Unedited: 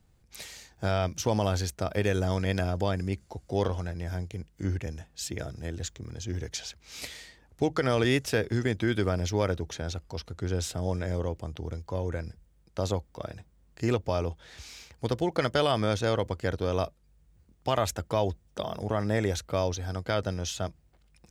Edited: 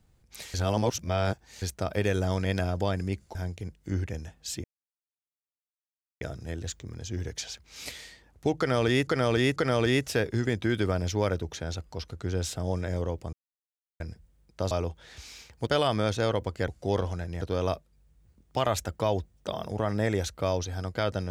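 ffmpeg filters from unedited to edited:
-filter_complex "[0:a]asplit=13[a][b][c][d][e][f][g][h][i][j][k][l][m];[a]atrim=end=0.542[n];[b]atrim=start=0.538:end=1.622,asetpts=PTS-STARTPTS,areverse[o];[c]atrim=start=1.618:end=3.352[p];[d]atrim=start=4.078:end=5.37,asetpts=PTS-STARTPTS,afade=t=out:st=1.288:d=0.004:c=hsin,apad=pad_dur=1.57[q];[e]atrim=start=5.37:end=8.232,asetpts=PTS-STARTPTS,afade=t=in:d=0.004:c=hsin[r];[f]atrim=start=7.738:end=8.232[s];[g]atrim=start=7.738:end=11.51,asetpts=PTS-STARTPTS,afade=t=out:st=3.768:d=0.004:c=hsin[t];[h]atrim=start=11.51:end=12.18,asetpts=PTS-STARTPTS,volume=0[u];[i]atrim=start=12.18:end=12.892,asetpts=PTS-STARTPTS,afade=t=in:d=0.004:c=hsin[v];[j]atrim=start=14.118:end=15.082[w];[k]atrim=start=15.508:end=16.522[x];[l]atrim=start=3.348:end=4.082[y];[m]atrim=start=16.518[z];[n][o]acrossfade=d=0.004:c1=hsin:c2=hsin[aa];[aa][p]acrossfade=d=0.004:c1=hsin:c2=hsin[ab];[q][r]concat=n=2:v=0:a=1[ac];[ab][ac]acrossfade=d=0.004:c1=hsin:c2=hsin[ad];[ad][s]acrossfade=d=0.004:c1=hsin:c2=hsin[ae];[t][u][v]concat=n=3:v=0:a=1[af];[ae][af]acrossfade=d=0.004:c1=hsin:c2=hsin[ag];[ag][w]acrossfade=d=0.004:c1=hsin:c2=hsin[ah];[ah][x]acrossfade=d=0.004:c1=hsin:c2=hsin[ai];[ai][y]acrossfade=d=0.004:c1=hsin:c2=hsin[aj];[aj][z]acrossfade=d=0.004:c1=hsin:c2=hsin"

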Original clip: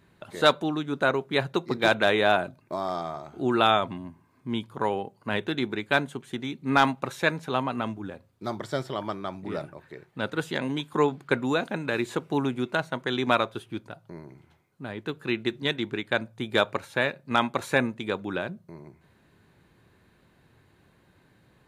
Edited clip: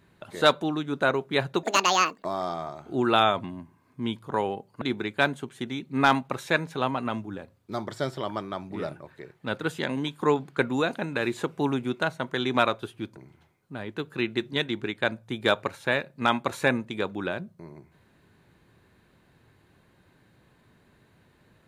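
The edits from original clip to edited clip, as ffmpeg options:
-filter_complex "[0:a]asplit=5[a][b][c][d][e];[a]atrim=end=1.634[f];[b]atrim=start=1.63:end=2.72,asetpts=PTS-STARTPTS,asetrate=78057,aresample=44100[g];[c]atrim=start=2.716:end=5.292[h];[d]atrim=start=5.538:end=13.892[i];[e]atrim=start=14.258[j];[f][g]acrossfade=d=0.004:c1=hsin:c2=hsin[k];[k][h]acrossfade=d=0.004:c1=hsin:c2=hsin[l];[l][i]acrossfade=d=0.004:c1=hsin:c2=hsin[m];[m][j]acrossfade=d=0.004:c1=hsin:c2=hsin"

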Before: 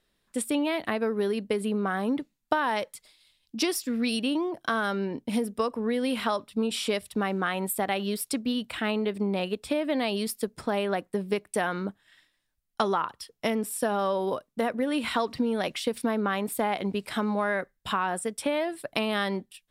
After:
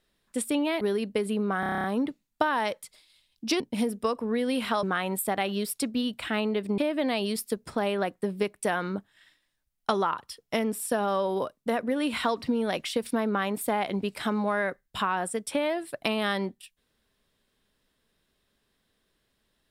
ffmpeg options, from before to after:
-filter_complex "[0:a]asplit=13[a][b][c][d][e][f][g][h][i][j][k][l][m];[a]atrim=end=0.812[n];[b]atrim=start=1.158:end=1.982[o];[c]atrim=start=1.948:end=1.982[p];[d]atrim=start=1.948:end=1.982[q];[e]atrim=start=1.948:end=1.982[r];[f]atrim=start=1.948:end=1.982[s];[g]atrim=start=1.948:end=1.982[t];[h]atrim=start=1.948:end=1.982[u];[i]atrim=start=1.948:end=1.982[v];[j]atrim=start=1.948:end=3.712[w];[k]atrim=start=5.148:end=6.382[x];[l]atrim=start=7.338:end=9.292[y];[m]atrim=start=9.688[z];[n][o]acrossfade=d=0.004:c1=hsin:c2=hsin[aa];[aa][p]acrossfade=d=0.004:c1=hsin:c2=hsin[ab];[ab][q]acrossfade=d=0.004:c1=hsin:c2=hsin[ac];[ac][r]acrossfade=d=0.004:c1=hsin:c2=hsin[ad];[ad][s]acrossfade=d=0.004:c1=hsin:c2=hsin[ae];[ae][t]acrossfade=d=0.004:c1=hsin:c2=hsin[af];[af][u]acrossfade=d=0.004:c1=hsin:c2=hsin[ag];[ag][v]acrossfade=d=0.004:c1=hsin:c2=hsin[ah];[ah][w]acrossfade=d=0.004:c1=hsin:c2=hsin[ai];[ai][x]acrossfade=d=0.004:c1=hsin:c2=hsin[aj];[aj][y]acrossfade=d=0.004:c1=hsin:c2=hsin[ak];[ak][z]acrossfade=d=0.004:c1=hsin:c2=hsin"

